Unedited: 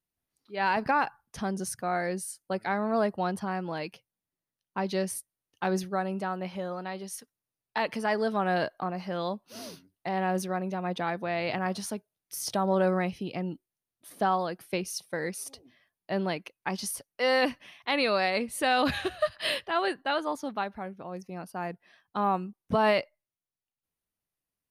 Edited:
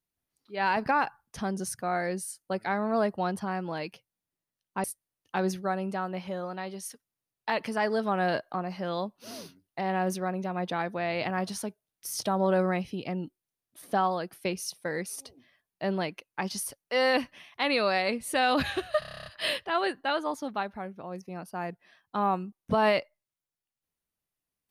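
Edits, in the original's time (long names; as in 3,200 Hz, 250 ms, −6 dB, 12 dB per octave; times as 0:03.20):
0:04.84–0:05.12: remove
0:19.27: stutter 0.03 s, 10 plays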